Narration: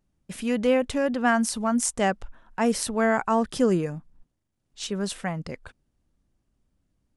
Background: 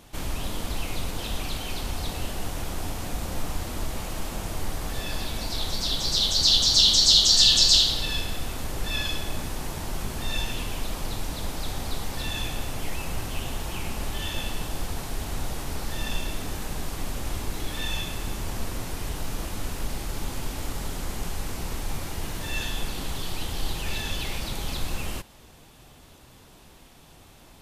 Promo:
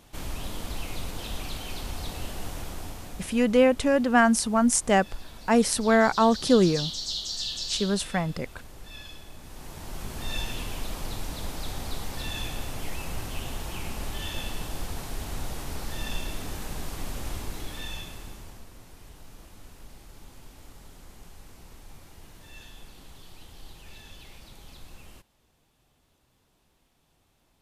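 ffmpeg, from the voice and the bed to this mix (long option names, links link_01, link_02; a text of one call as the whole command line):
ffmpeg -i stem1.wav -i stem2.wav -filter_complex "[0:a]adelay=2900,volume=2.5dB[link_01];[1:a]volume=8dB,afade=type=out:start_time=2.53:duration=0.94:silence=0.281838,afade=type=in:start_time=9.4:duration=0.92:silence=0.251189,afade=type=out:start_time=17.26:duration=1.39:silence=0.199526[link_02];[link_01][link_02]amix=inputs=2:normalize=0" out.wav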